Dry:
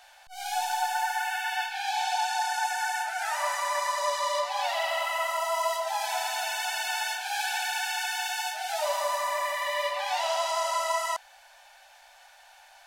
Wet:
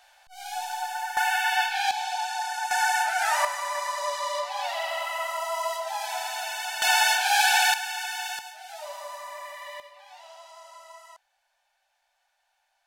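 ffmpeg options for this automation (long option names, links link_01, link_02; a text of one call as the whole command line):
ffmpeg -i in.wav -af "asetnsamples=nb_out_samples=441:pad=0,asendcmd='1.17 volume volume 6dB;1.91 volume volume -2dB;2.71 volume volume 6dB;3.45 volume volume -1.5dB;6.82 volume volume 9.5dB;7.74 volume volume -1.5dB;8.39 volume volume -10dB;9.8 volume volume -19.5dB',volume=-3.5dB" out.wav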